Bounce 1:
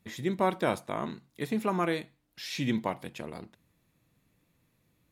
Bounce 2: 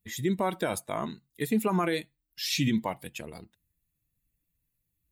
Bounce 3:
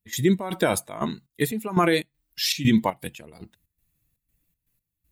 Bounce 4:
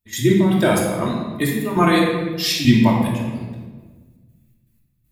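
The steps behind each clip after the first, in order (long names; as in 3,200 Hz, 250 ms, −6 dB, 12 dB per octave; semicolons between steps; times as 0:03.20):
spectral dynamics exaggerated over time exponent 1.5; high-shelf EQ 6,800 Hz +8.5 dB; brickwall limiter −25 dBFS, peak gain reduction 10 dB; level +7.5 dB
gate pattern ".xx.xxx.xx.x." 119 BPM −12 dB; level +8 dB
rectangular room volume 1,200 cubic metres, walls mixed, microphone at 2.7 metres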